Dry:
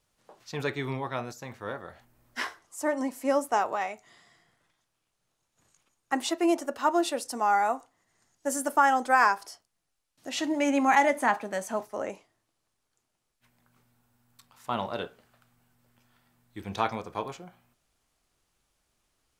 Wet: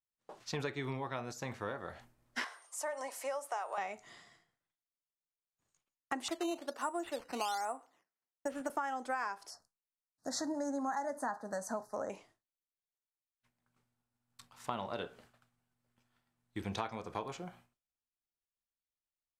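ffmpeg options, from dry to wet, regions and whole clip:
-filter_complex "[0:a]asettb=1/sr,asplit=3[s0][s1][s2];[s0]atrim=end=2.444[s3];[s1]atrim=start=2.44:end=3.78,asetpts=PTS-STARTPTS,afade=t=in:d=0.004:c=qsin,afade=t=out:st=1.336:d=0.004:c=qsin,highpass=f=510:w=0.5412,highpass=f=510:w=1.3066,acompressor=threshold=0.00794:ratio=1.5:attack=3.2:release=140:knee=1:detection=peak,aeval=exprs='val(0)+0.000708*sin(2*PI*8800*n/s)':c=same[s4];[s2]atrim=start=3.776[s5];[s3][s4]acrossfade=d=0.004:c1=hsin:c2=qsin[s6];[s6][s5]acrossfade=d=0.004:c1=qsin:c2=hsin,asettb=1/sr,asplit=3[s7][s8][s9];[s7]atrim=end=6.284[s10];[s8]atrim=start=6.28:end=8.7,asetpts=PTS-STARTPTS,afade=t=in:d=0.004:c=qsin,afade=t=out:st=2.416:d=0.004:c=qsin,highpass=270,lowpass=2900,acrusher=samples=9:mix=1:aa=0.000001:lfo=1:lforange=9:lforate=1.2[s11];[s9]atrim=start=8.696[s12];[s10][s11]acrossfade=d=0.004:c1=hsin:c2=qsin[s13];[s13][s12]acrossfade=d=0.004:c1=qsin:c2=hsin,asettb=1/sr,asplit=3[s14][s15][s16];[s14]atrim=end=9.504[s17];[s15]atrim=start=9.5:end=12.1,asetpts=PTS-STARTPTS,afade=t=in:d=0.004:c=qsin,afade=t=out:st=2.596:d=0.004:c=qsin,asuperstop=centerf=2700:order=8:qfactor=1.1,equalizer=f=360:t=o:w=0.35:g=-9[s18];[s16]atrim=start=12.096[s19];[s17][s18]acrossfade=d=0.004:c1=hsin:c2=qsin[s20];[s20][s19]acrossfade=d=0.004:c1=qsin:c2=hsin,lowpass=11000,agate=range=0.0224:threshold=0.00158:ratio=3:detection=peak,acompressor=threshold=0.0141:ratio=6,volume=1.26"

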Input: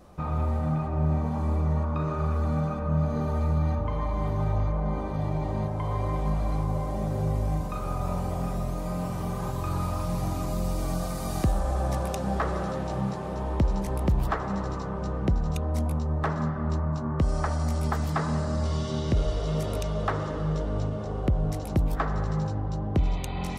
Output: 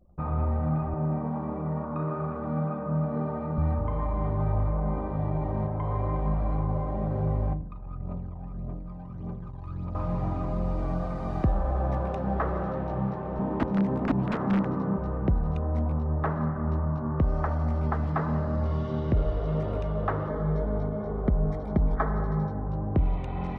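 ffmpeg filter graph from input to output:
-filter_complex "[0:a]asettb=1/sr,asplit=3[s0][s1][s2];[s0]atrim=end=0.944[s3];[s1]atrim=start=0.94:end=3.58,asetpts=PTS-STARTPTS,afade=t=in:d=0.004:c=qsin,afade=t=out:st=2.636:d=0.004:c=qsin,highpass=f=130:w=0.5412,highpass=f=130:w=1.3066,highshelf=f=5700:g=-12[s4];[s2]atrim=start=3.576[s5];[s3][s4]acrossfade=d=0.004:c1=hsin:c2=qsin[s6];[s6][s5]acrossfade=d=0.004:c1=qsin:c2=hsin,asettb=1/sr,asplit=3[s7][s8][s9];[s7]atrim=end=7.534[s10];[s8]atrim=start=7.53:end=9.95,asetpts=PTS-STARTPTS,afade=t=in:d=0.004:c=qsin,afade=t=out:st=2.416:d=0.004:c=qsin,bass=f=250:g=-12,treble=f=4000:g=-4,acrossover=split=270|3000[s11][s12][s13];[s12]acompressor=threshold=0.00178:ratio=3:attack=3.2:release=140:knee=2.83:detection=peak[s14];[s11][s14][s13]amix=inputs=3:normalize=0,aphaser=in_gain=1:out_gain=1:delay=1.3:decay=0.58:speed=1.7:type=triangular[s15];[s9]atrim=start=9.946[s16];[s10][s15]acrossfade=d=0.004:c1=hsin:c2=qsin[s17];[s17][s16]acrossfade=d=0.004:c1=qsin:c2=hsin,asettb=1/sr,asplit=3[s18][s19][s20];[s18]atrim=end=13.394[s21];[s19]atrim=start=13.39:end=14.98,asetpts=PTS-STARTPTS,afade=t=in:d=0.004:c=qsin,afade=t=out:st=1.586:d=0.004:c=qsin,highpass=f=92:w=0.5412,highpass=f=92:w=1.3066,aeval=exprs='(mod(13.3*val(0)+1,2)-1)/13.3':c=same,equalizer=f=230:t=o:w=1:g=11.5[s22];[s20]atrim=start=14.976[s23];[s21][s22]acrossfade=d=0.004:c1=hsin:c2=qsin[s24];[s24][s23]acrossfade=d=0.004:c1=qsin:c2=hsin,asettb=1/sr,asplit=3[s25][s26][s27];[s25]atrim=end=20.294[s28];[s26]atrim=start=20.29:end=22.69,asetpts=PTS-STARTPTS,afade=t=in:d=0.004:c=qsin,afade=t=out:st=2.396:d=0.004:c=qsin,asuperstop=centerf=2700:order=8:qfactor=4.2,aecho=1:1:4.7:0.5,atrim=end_sample=105840[s29];[s27]atrim=start=22.686[s30];[s28][s29]acrossfade=d=0.004:c1=hsin:c2=qsin[s31];[s31][s30]acrossfade=d=0.004:c1=qsin:c2=hsin,anlmdn=0.0631,lowpass=1700"

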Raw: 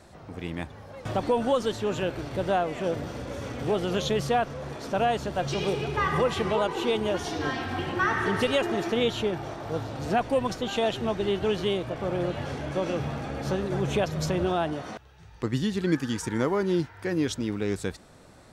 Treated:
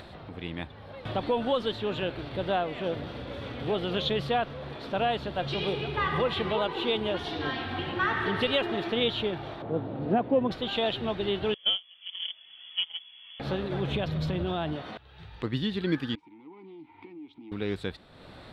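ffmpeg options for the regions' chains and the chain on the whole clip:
-filter_complex "[0:a]asettb=1/sr,asplit=3[s0][s1][s2];[s0]atrim=end=9.624[s3];[s1]atrim=start=9.62:end=10.51,asetpts=PTS-STARTPTS,afade=t=in:d=0.004:c=qsin,afade=t=out:st=0.886:d=0.004:c=qsin,highpass=190,lowpass=2900,tiltshelf=f=770:g=10[s4];[s2]atrim=start=10.506[s5];[s3][s4]acrossfade=d=0.004:c1=hsin:c2=qsin[s6];[s6][s5]acrossfade=d=0.004:c1=qsin:c2=hsin,asettb=1/sr,asplit=3[s7][s8][s9];[s7]atrim=end=11.544[s10];[s8]atrim=start=11.54:end=13.4,asetpts=PTS-STARTPTS,afade=t=in:d=0.004:c=qsin,afade=t=out:st=1.856:d=0.004:c=qsin,agate=range=0.0631:threshold=0.0501:ratio=16:release=100:detection=peak,lowpass=f=3000:t=q:w=0.5098,lowpass=f=3000:t=q:w=0.6013,lowpass=f=3000:t=q:w=0.9,lowpass=f=3000:t=q:w=2.563,afreqshift=-3500[s11];[s9]atrim=start=13.396[s12];[s10][s11]acrossfade=d=0.004:c1=hsin:c2=qsin[s13];[s13][s12]acrossfade=d=0.004:c1=qsin:c2=hsin,asettb=1/sr,asplit=3[s14][s15][s16];[s14]atrim=end=13.924[s17];[s15]atrim=start=13.92:end=14.76,asetpts=PTS-STARTPTS,afade=t=in:d=0.004:c=qsin,afade=t=out:st=0.836:d=0.004:c=qsin,bass=f=250:g=7,treble=f=4000:g=1,acompressor=threshold=0.0631:ratio=2.5:attack=3.2:release=140:knee=1:detection=peak[s18];[s16]atrim=start=14.756[s19];[s17][s18]acrossfade=d=0.004:c1=hsin:c2=qsin[s20];[s20][s19]acrossfade=d=0.004:c1=qsin:c2=hsin,asettb=1/sr,asplit=3[s21][s22][s23];[s21]atrim=end=16.154[s24];[s22]atrim=start=16.15:end=17.52,asetpts=PTS-STARTPTS,afade=t=in:d=0.004:c=qsin,afade=t=out:st=1.366:d=0.004:c=qsin,aeval=exprs='clip(val(0),-1,0.0596)':c=same,acompressor=threshold=0.0158:ratio=12:attack=3.2:release=140:knee=1:detection=peak,asplit=3[s25][s26][s27];[s25]bandpass=f=300:t=q:w=8,volume=1[s28];[s26]bandpass=f=870:t=q:w=8,volume=0.501[s29];[s27]bandpass=f=2240:t=q:w=8,volume=0.355[s30];[s28][s29][s30]amix=inputs=3:normalize=0[s31];[s23]atrim=start=17.516[s32];[s24][s31]acrossfade=d=0.004:c1=hsin:c2=qsin[s33];[s33][s32]acrossfade=d=0.004:c1=qsin:c2=hsin,highshelf=f=4900:t=q:w=3:g=-10,acompressor=mode=upward:threshold=0.0178:ratio=2.5,volume=0.708"

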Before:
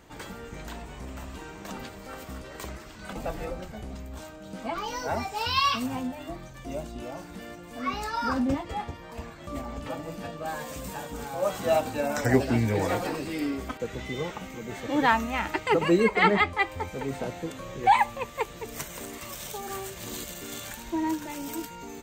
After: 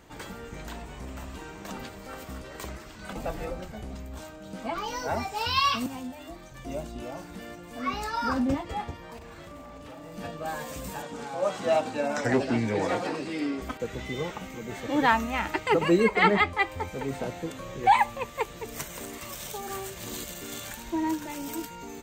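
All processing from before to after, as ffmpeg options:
-filter_complex "[0:a]asettb=1/sr,asplit=3[s0][s1][s2];[s0]atrim=end=5.864[s3];[s1]atrim=start=5.86:end=6.52,asetpts=PTS-STARTPTS,afade=t=in:d=0.004:c=qsin,afade=t=out:st=0.656:d=0.004:c=qsin,highpass=50,equalizer=f=130:w=1.7:g=-11.5,acrossover=split=220|3000[s4][s5][s6];[s5]acompressor=threshold=0.00398:ratio=1.5:attack=3.2:release=140:knee=2.83:detection=peak[s7];[s4][s7][s6]amix=inputs=3:normalize=0[s8];[s2]atrim=start=6.516[s9];[s3][s8]acrossfade=d=0.004:c1=hsin:c2=qsin[s10];[s10][s9]acrossfade=d=0.004:c1=qsin:c2=hsin,asettb=1/sr,asplit=3[s11][s12][s13];[s11]atrim=end=9.174[s14];[s12]atrim=start=9.17:end=10.17,asetpts=PTS-STARTPTS,afade=t=in:d=0.004:c=qsin,afade=t=out:st=0.996:d=0.004:c=qsin,acompressor=threshold=0.01:ratio=20:attack=3.2:release=140:knee=1:detection=peak,aeval=exprs='0.0106*(abs(mod(val(0)/0.0106+3,4)-2)-1)':c=same,asplit=2[s15][s16];[s16]adelay=41,volume=0.631[s17];[s15][s17]amix=inputs=2:normalize=0,atrim=end_sample=44100[s18];[s13]atrim=start=10.166[s19];[s14][s18]acrossfade=d=0.004:c1=hsin:c2=qsin[s20];[s20][s19]acrossfade=d=0.004:c1=qsin:c2=hsin,asettb=1/sr,asplit=3[s21][s22][s23];[s21]atrim=end=11.024[s24];[s22]atrim=start=11.02:end=13.62,asetpts=PTS-STARTPTS,afade=t=in:d=0.004:c=qsin,afade=t=out:st=2.596:d=0.004:c=qsin,asoftclip=type=hard:threshold=0.15,highpass=150,lowpass=6900[s25];[s23]atrim=start=13.616[s26];[s24][s25]acrossfade=d=0.004:c1=hsin:c2=qsin[s27];[s27][s26]acrossfade=d=0.004:c1=qsin:c2=hsin"

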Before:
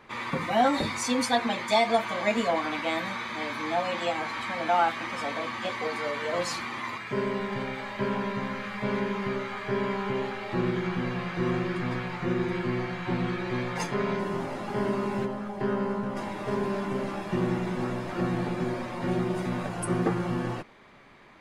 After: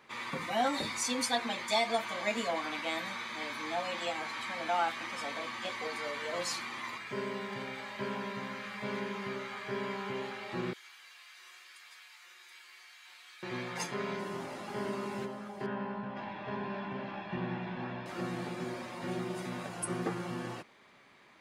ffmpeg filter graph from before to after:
-filter_complex "[0:a]asettb=1/sr,asplit=3[s0][s1][s2];[s0]atrim=end=10.734[s3];[s1]atrim=start=10.73:end=13.43,asetpts=PTS-STARTPTS,afade=t=in:d=0.004:c=qsin,afade=t=out:st=2.696:d=0.004:c=qsin,highpass=880,aderivative[s4];[s2]atrim=start=13.426[s5];[s3][s4]acrossfade=d=0.004:c1=hsin:c2=qsin[s6];[s6][s5]acrossfade=d=0.004:c1=qsin:c2=hsin,asettb=1/sr,asplit=3[s7][s8][s9];[s7]atrim=end=15.664[s10];[s8]atrim=start=15.66:end=18.06,asetpts=PTS-STARTPTS,afade=t=in:d=0.004:c=qsin,afade=t=out:st=2.396:d=0.004:c=qsin,lowpass=f=3500:w=0.5412,lowpass=f=3500:w=1.3066,aecho=1:1:1.2:0.4,atrim=end_sample=105840[s11];[s9]atrim=start=18.056[s12];[s10][s11]acrossfade=d=0.004:c1=hsin:c2=qsin[s13];[s13][s12]acrossfade=d=0.004:c1=qsin:c2=hsin,highpass=f=140:p=1,highshelf=f=2600:g=8,volume=0.398"

